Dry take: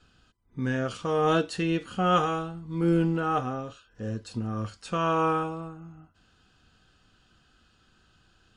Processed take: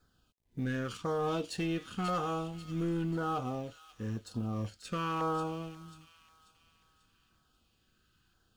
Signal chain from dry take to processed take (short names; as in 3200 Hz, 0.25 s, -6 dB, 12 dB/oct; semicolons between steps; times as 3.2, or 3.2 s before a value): G.711 law mismatch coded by A; compressor 2.5:1, threshold -27 dBFS, peak gain reduction 6.5 dB; soft clip -26.5 dBFS, distortion -14 dB; LFO notch saw down 0.96 Hz 520–2900 Hz; on a send: thin delay 0.539 s, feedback 43%, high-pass 2900 Hz, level -7 dB